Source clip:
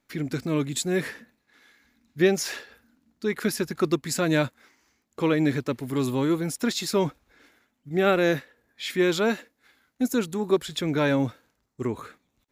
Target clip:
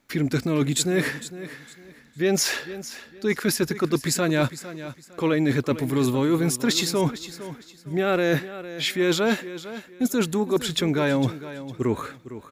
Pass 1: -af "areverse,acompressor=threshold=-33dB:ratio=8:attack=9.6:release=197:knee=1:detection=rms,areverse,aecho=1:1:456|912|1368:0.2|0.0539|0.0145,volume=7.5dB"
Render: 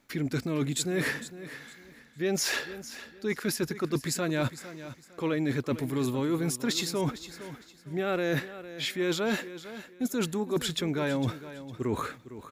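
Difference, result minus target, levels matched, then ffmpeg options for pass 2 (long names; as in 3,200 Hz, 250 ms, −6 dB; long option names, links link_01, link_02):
downward compressor: peak gain reduction +7 dB
-af "areverse,acompressor=threshold=-25dB:ratio=8:attack=9.6:release=197:knee=1:detection=rms,areverse,aecho=1:1:456|912|1368:0.2|0.0539|0.0145,volume=7.5dB"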